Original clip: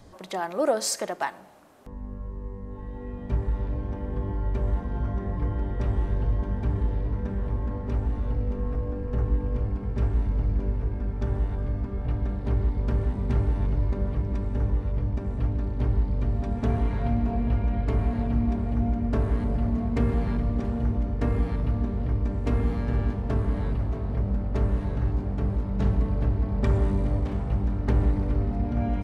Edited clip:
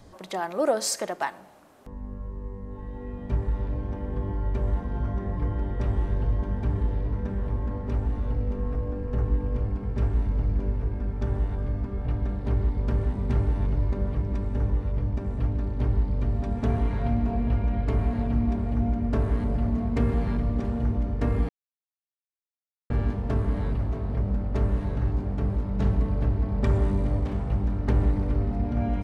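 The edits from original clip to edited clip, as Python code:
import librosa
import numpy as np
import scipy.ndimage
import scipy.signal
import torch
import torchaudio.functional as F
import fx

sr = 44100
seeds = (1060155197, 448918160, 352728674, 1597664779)

y = fx.edit(x, sr, fx.silence(start_s=21.49, length_s=1.41), tone=tone)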